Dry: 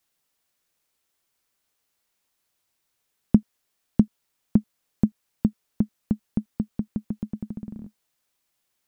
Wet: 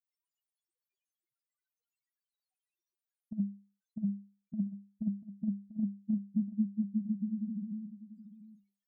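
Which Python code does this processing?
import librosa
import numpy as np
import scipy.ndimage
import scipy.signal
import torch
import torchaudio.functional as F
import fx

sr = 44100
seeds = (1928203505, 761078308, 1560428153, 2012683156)

p1 = fx.hum_notches(x, sr, base_hz=50, count=4)
p2 = fx.spec_topn(p1, sr, count=1)
p3 = fx.over_compress(p2, sr, threshold_db=-31.0, ratio=-0.5)
p4 = p3 + fx.echo_single(p3, sr, ms=690, db=-14.5, dry=0)
p5 = fx.end_taper(p4, sr, db_per_s=400.0)
y = p5 * librosa.db_to_amplitude(2.5)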